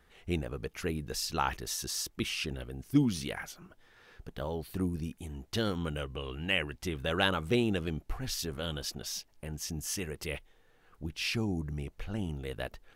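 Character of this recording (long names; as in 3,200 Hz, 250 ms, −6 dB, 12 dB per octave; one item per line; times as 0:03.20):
background noise floor −65 dBFS
spectral slope −4.0 dB per octave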